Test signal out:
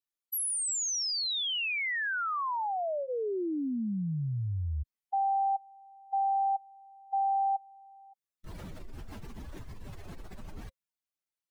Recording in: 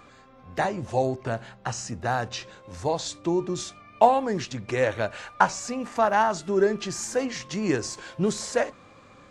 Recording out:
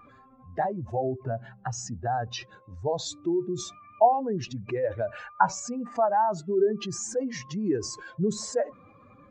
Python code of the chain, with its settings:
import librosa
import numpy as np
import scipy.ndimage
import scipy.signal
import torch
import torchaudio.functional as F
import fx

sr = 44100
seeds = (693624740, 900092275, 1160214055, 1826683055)

y = fx.spec_expand(x, sr, power=2.0)
y = fx.notch(y, sr, hz=530.0, q=17.0)
y = F.gain(torch.from_numpy(y), -1.5).numpy()